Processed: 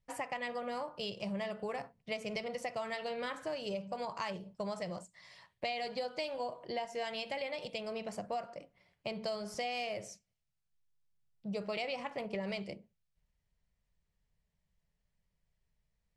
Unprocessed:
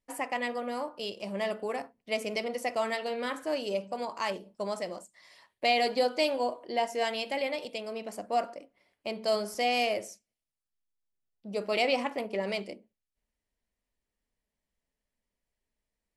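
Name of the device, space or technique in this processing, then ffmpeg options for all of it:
jukebox: -af "lowpass=7300,lowshelf=frequency=200:width_type=q:width=3:gain=8,acompressor=threshold=-35dB:ratio=6"

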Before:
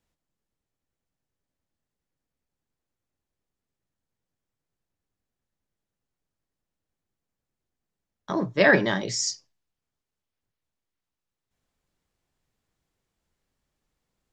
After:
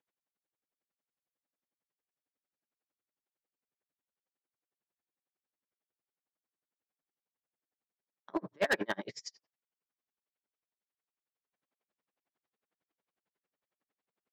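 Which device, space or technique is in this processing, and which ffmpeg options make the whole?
helicopter radio: -af "highpass=300,lowpass=2800,aeval=exprs='val(0)*pow(10,-37*(0.5-0.5*cos(2*PI*11*n/s))/20)':channel_layout=same,asoftclip=type=hard:threshold=-23.5dB"

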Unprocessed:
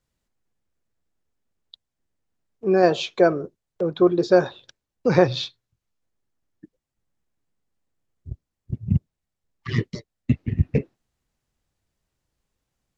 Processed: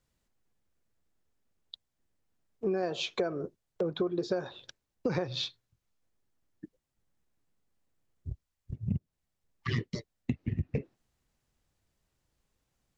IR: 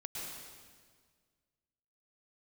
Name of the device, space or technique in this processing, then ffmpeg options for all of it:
serial compression, leveller first: -filter_complex "[0:a]acompressor=threshold=-18dB:ratio=2,acompressor=threshold=-28dB:ratio=6,asettb=1/sr,asplit=3[link_01][link_02][link_03];[link_01]atrim=end=8.314[link_04];[link_02]atrim=start=8.31:end=8.75,asetpts=PTS-STARTPTS,afade=type=in:duration=0.004:curve=qsin,afade=type=out:start_time=0.436:duration=0.004:curve=qsin,equalizer=frequency=260:width_type=o:width=2.8:gain=-10[link_05];[link_03]atrim=start=8.746[link_06];[link_04][link_05]acrossfade=duration=0.004:curve1=hsin:curve2=qsin[link_07];[link_07][link_06]acrossfade=duration=0.004:curve1=qsin:curve2=hsin"

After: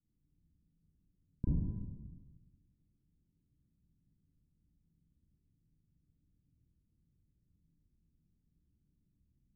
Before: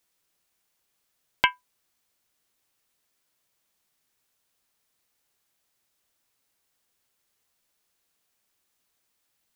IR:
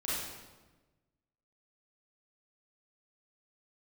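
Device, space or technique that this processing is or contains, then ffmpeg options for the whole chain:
club heard from the street: -filter_complex "[0:a]alimiter=limit=-5dB:level=0:latency=1,lowpass=frequency=200:width=0.5412,lowpass=frequency=200:width=1.3066[link_01];[1:a]atrim=start_sample=2205[link_02];[link_01][link_02]afir=irnorm=-1:irlink=0,volume=14.5dB"

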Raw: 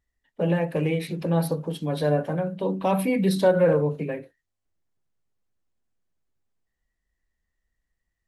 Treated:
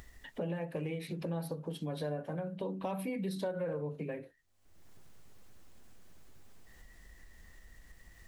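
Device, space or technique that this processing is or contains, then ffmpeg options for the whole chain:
upward and downward compression: -af "acompressor=mode=upward:threshold=-34dB:ratio=2.5,acompressor=threshold=-37dB:ratio=4"

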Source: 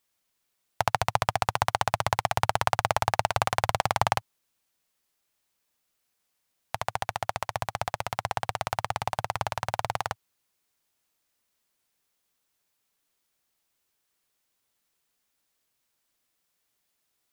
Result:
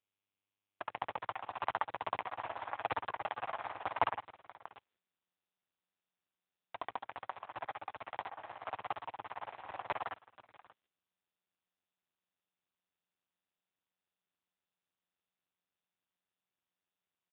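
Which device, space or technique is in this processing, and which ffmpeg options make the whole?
satellite phone: -filter_complex "[0:a]agate=range=-58dB:threshold=-52dB:ratio=16:detection=peak,asettb=1/sr,asplit=3[link_01][link_02][link_03];[link_01]atrim=end=1.884[link_04];[link_02]atrim=start=1.88:end=3.31,asetpts=PTS-STARTPTS,afade=type=in:duration=0.004:curve=qsin,afade=type=out:start_time=1.426:duration=0.004:curve=qsin,highpass=frequency=65:width=0.5412,highpass=frequency=65:width=1.3066[link_05];[link_03]atrim=start=3.306[link_06];[link_04][link_05]acrossfade=duration=0.004:curve1=hsin:curve2=qsin[link_07];[link_07][link_06]acrossfade=duration=0.004:curve1=qsin:curve2=hsin,highpass=380,lowpass=3300,aecho=1:1:587:0.0891,volume=5.5dB" -ar 8000 -c:a libopencore_amrnb -b:a 5900

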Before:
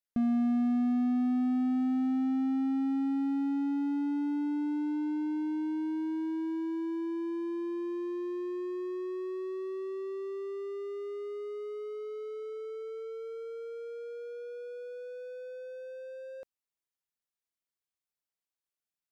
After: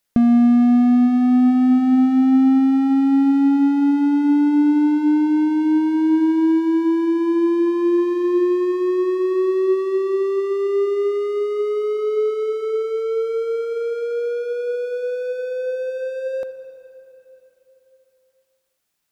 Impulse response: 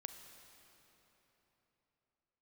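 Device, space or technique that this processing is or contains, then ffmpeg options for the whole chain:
ducked reverb: -filter_complex "[0:a]asplit=3[link_01][link_02][link_03];[1:a]atrim=start_sample=2205[link_04];[link_02][link_04]afir=irnorm=-1:irlink=0[link_05];[link_03]apad=whole_len=843012[link_06];[link_05][link_06]sidechaincompress=threshold=-33dB:ratio=8:attack=16:release=390,volume=9.5dB[link_07];[link_01][link_07]amix=inputs=2:normalize=0,volume=9dB"

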